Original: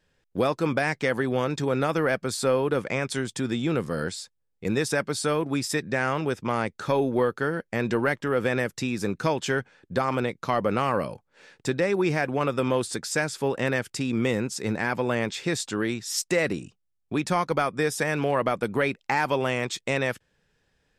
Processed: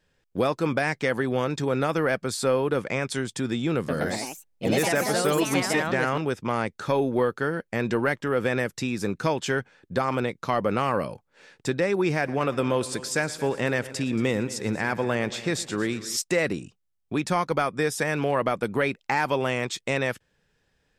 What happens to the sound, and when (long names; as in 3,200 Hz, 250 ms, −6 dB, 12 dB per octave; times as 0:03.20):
0:03.76–0:06.49: delay with pitch and tempo change per echo 124 ms, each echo +3 semitones, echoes 3
0:12.14–0:16.17: echo machine with several playback heads 115 ms, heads first and second, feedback 45%, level −19 dB